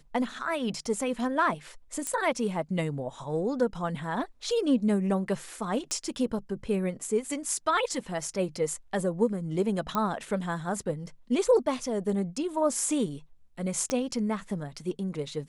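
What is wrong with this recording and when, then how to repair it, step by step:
0:02.07: click −17 dBFS
0:05.91: click −19 dBFS
0:09.95: click −15 dBFS
0:13.90: click −16 dBFS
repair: click removal

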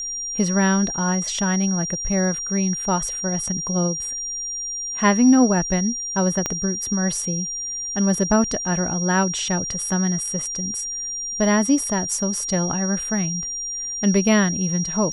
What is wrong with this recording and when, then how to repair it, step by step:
whistle 5,700 Hz −26 dBFS
0:06.46: click −8 dBFS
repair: click removal
notch filter 5,700 Hz, Q 30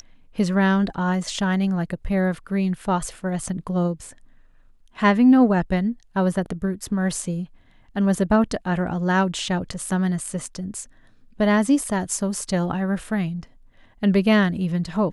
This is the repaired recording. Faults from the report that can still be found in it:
0:06.46: click

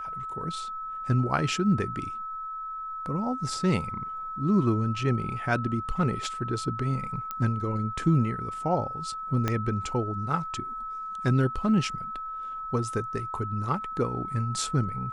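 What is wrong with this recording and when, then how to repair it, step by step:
whistle 1,300 Hz −33 dBFS
0:07.31: click −18 dBFS
0:09.48: click −12 dBFS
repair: click removal
notch filter 1,300 Hz, Q 30

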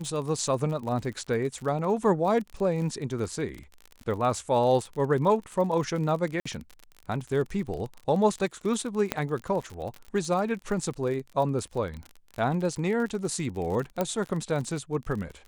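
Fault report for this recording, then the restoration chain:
surface crackle 42 per second −33 dBFS
0:06.40–0:06.46: drop-out 55 ms
0:09.12: click −10 dBFS
0:14.01: click −13 dBFS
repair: click removal
repair the gap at 0:06.40, 55 ms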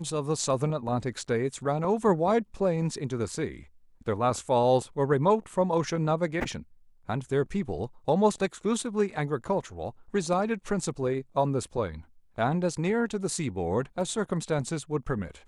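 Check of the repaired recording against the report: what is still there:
0:14.01: click

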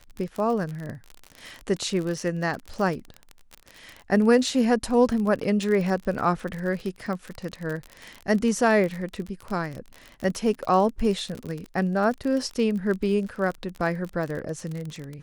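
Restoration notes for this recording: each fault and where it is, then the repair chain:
surface crackle 39 per second −29 dBFS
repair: click removal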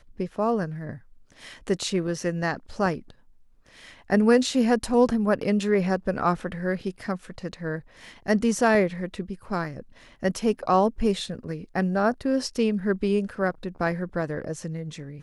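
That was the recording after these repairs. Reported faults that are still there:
none of them is left

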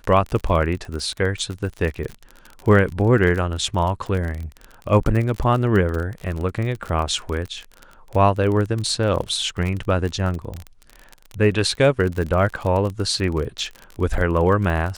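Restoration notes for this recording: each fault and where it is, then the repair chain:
surface crackle 36 per second −25 dBFS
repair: click removal

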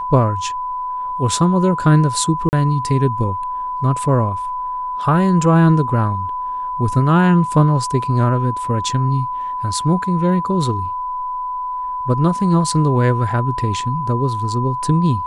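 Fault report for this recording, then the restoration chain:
whistle 1,000 Hz −21 dBFS
0:02.49–0:02.53: drop-out 39 ms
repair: notch filter 1,000 Hz, Q 30
repair the gap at 0:02.49, 39 ms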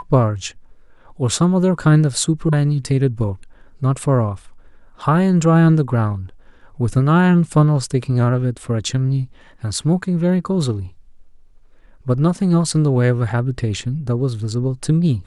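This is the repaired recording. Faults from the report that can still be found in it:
none of them is left

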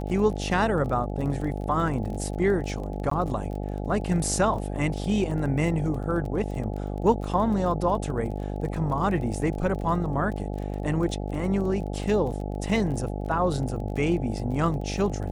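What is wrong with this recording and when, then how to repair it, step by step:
mains buzz 50 Hz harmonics 17 −31 dBFS
surface crackle 26 per second −34 dBFS
0:03.10–0:03.11: drop-out 14 ms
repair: click removal
hum removal 50 Hz, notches 17
repair the gap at 0:03.10, 14 ms

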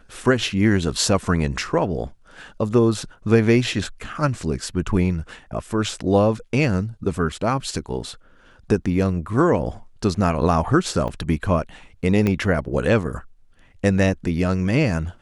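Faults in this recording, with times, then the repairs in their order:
0:11.08–0:11.09: drop-out 5.7 ms
0:12.27: click −9 dBFS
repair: click removal
repair the gap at 0:11.08, 5.7 ms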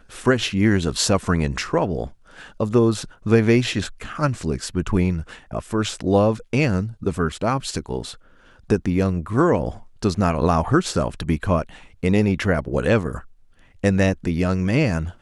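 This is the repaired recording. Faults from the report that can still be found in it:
0:12.27: click

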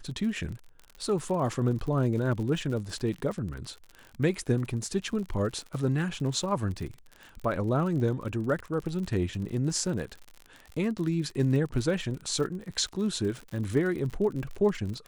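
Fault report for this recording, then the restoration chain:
surface crackle 55 per second −35 dBFS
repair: click removal

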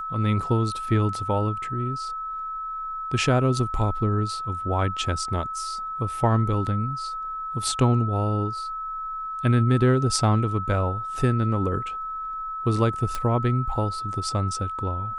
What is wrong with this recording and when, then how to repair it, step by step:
whistle 1,300 Hz −29 dBFS
0:13.15: click −14 dBFS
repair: click removal
notch filter 1,300 Hz, Q 30

